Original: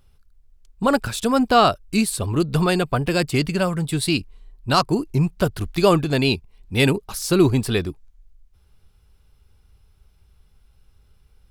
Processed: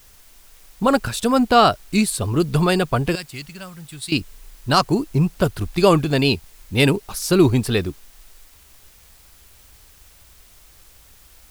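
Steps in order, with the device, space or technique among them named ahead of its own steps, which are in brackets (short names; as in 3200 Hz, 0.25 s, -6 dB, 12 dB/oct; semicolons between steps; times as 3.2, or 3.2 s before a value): 3.15–4.12 passive tone stack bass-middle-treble 5-5-5; plain cassette with noise reduction switched in (mismatched tape noise reduction decoder only; wow and flutter; white noise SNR 30 dB); gain +1.5 dB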